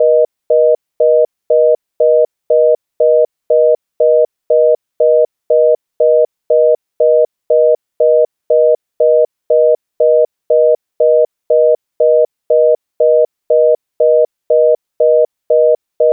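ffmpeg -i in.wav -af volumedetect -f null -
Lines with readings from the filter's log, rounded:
mean_volume: -11.8 dB
max_volume: -2.6 dB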